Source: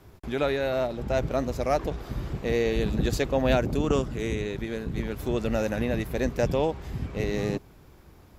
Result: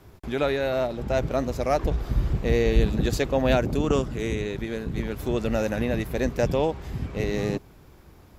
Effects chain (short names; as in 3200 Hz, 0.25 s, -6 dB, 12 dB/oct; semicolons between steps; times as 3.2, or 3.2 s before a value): 1.82–2.85 low shelf 99 Hz +11.5 dB; gain +1.5 dB